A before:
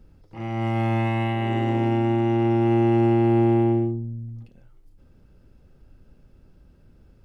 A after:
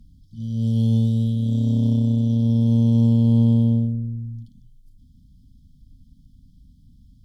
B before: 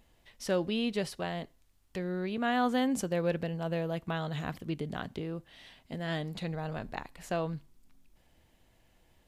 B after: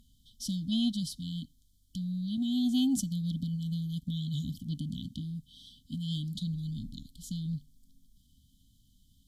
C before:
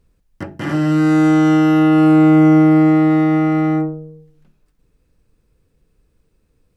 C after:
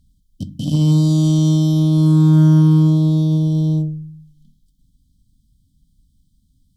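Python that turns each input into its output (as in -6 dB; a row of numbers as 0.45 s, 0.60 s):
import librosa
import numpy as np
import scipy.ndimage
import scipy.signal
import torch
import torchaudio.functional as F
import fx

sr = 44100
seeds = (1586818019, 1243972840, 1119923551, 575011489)

y = fx.brickwall_bandstop(x, sr, low_hz=290.0, high_hz=3000.0)
y = fx.cheby_harmonics(y, sr, harmonics=(7,), levels_db=(-26,), full_scale_db=-11.5)
y = F.gain(torch.from_numpy(y), 7.0).numpy()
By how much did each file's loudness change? +2.5 LU, 0.0 LU, -1.5 LU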